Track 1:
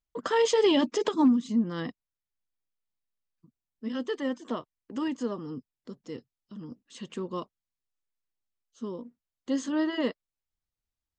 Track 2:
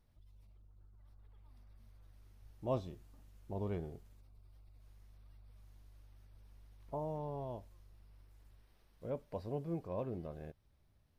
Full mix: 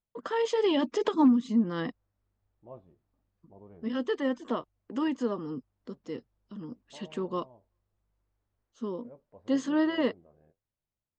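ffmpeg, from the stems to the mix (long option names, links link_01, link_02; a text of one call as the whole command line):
ffmpeg -i stem1.wav -i stem2.wav -filter_complex "[0:a]volume=-4dB[link_01];[1:a]lowpass=1600,flanger=delay=5.6:depth=6.3:regen=-64:speed=1.1:shape=sinusoidal,volume=-13dB[link_02];[link_01][link_02]amix=inputs=2:normalize=0,lowpass=frequency=2900:poles=1,lowshelf=frequency=120:gain=-10,dynaudnorm=framelen=150:gausssize=13:maxgain=7dB" out.wav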